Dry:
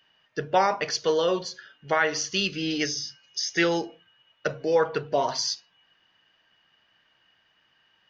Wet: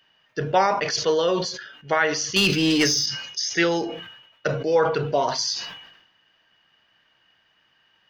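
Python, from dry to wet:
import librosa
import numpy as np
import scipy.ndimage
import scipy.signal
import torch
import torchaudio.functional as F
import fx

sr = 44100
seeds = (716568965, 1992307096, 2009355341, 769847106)

y = fx.leveller(x, sr, passes=2, at=(2.36, 3.06))
y = fx.notch(y, sr, hz=1800.0, q=10.0, at=(4.56, 5.28))
y = fx.sustainer(y, sr, db_per_s=63.0)
y = y * 10.0 ** (2.0 / 20.0)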